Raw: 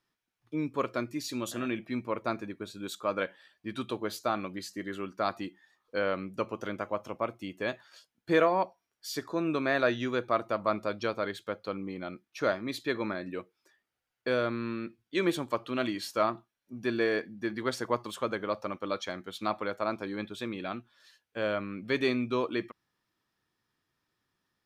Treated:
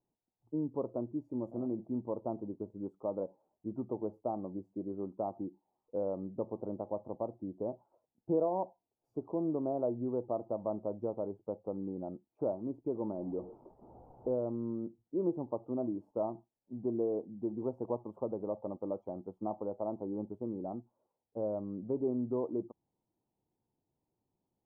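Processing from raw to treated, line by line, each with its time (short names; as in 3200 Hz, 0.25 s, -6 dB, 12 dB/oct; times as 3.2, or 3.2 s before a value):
13.18–14.35 zero-crossing step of -41.5 dBFS
whole clip: compressor 1.5:1, threshold -34 dBFS; elliptic low-pass 870 Hz, stop band 50 dB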